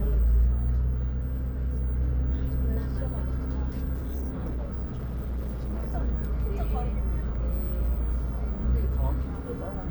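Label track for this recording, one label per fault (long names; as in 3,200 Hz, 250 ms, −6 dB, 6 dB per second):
3.930000	5.950000	clipping −27.5 dBFS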